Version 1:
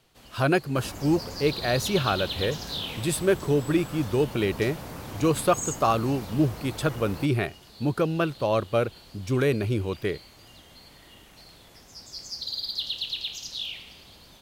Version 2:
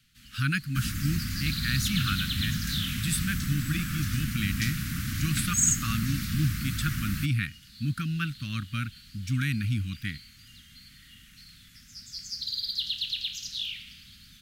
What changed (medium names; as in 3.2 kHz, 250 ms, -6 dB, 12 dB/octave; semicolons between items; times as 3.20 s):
second sound +9.5 dB; master: add inverse Chebyshev band-stop 370–950 Hz, stop band 40 dB